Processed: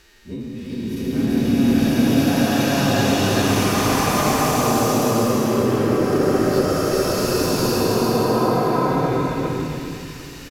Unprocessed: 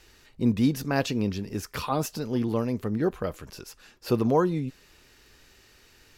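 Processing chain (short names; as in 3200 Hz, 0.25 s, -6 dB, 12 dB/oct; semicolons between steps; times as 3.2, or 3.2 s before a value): spectral dilation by 0.48 s; in parallel at 0 dB: limiter -9.5 dBFS, peak gain reduction 8 dB; on the sum: compressor 20:1, threshold -19 dBFS, peak gain reduction 13 dB; time stretch by phase-locked vocoder 1.7×; vibrato 3.2 Hz 5 cents; on a send: echo 0.406 s -3 dB; on the sum: bloom reverb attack 1.2 s, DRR -12 dB; gain -8 dB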